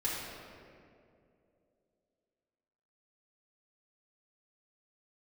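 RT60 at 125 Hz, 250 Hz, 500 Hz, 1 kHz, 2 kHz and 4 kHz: 2.8 s, 3.0 s, 3.1 s, 2.1 s, 1.8 s, 1.3 s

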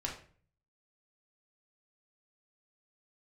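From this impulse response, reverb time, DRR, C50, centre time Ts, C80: 0.45 s, -2.0 dB, 7.0 dB, 24 ms, 12.0 dB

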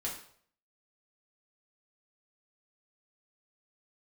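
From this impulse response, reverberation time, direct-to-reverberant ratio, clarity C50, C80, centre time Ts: 0.60 s, -4.5 dB, 6.5 dB, 10.0 dB, 29 ms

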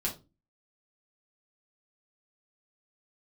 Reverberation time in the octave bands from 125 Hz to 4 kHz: 0.45 s, 0.45 s, 0.30 s, 0.25 s, 0.20 s, 0.20 s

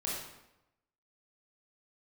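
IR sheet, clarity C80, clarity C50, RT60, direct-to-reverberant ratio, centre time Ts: 3.5 dB, 0.5 dB, 0.90 s, -6.0 dB, 65 ms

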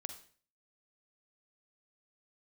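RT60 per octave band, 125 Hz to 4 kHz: 0.55 s, 0.50 s, 0.45 s, 0.45 s, 0.45 s, 0.45 s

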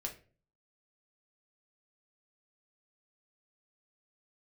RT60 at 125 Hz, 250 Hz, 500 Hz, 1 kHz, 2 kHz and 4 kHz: 0.65 s, 0.55 s, 0.45 s, 0.35 s, 0.35 s, 0.25 s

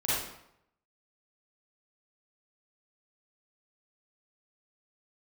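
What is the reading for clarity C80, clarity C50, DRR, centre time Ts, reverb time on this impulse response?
2.0 dB, -4.5 dB, -10.0 dB, 80 ms, 0.75 s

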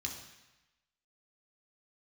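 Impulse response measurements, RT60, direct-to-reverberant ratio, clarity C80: 1.0 s, -0.5 dB, 8.0 dB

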